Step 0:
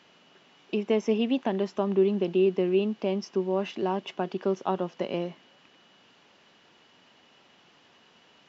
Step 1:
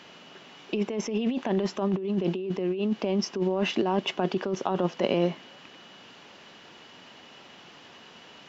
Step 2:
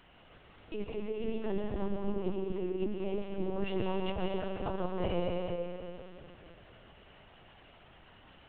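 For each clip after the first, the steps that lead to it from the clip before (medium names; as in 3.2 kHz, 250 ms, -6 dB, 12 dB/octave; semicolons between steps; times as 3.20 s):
compressor with a negative ratio -31 dBFS, ratio -1; trim +4.5 dB
median filter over 9 samples; reverberation RT60 2.8 s, pre-delay 90 ms, DRR -0.5 dB; LPC vocoder at 8 kHz pitch kept; trim -9 dB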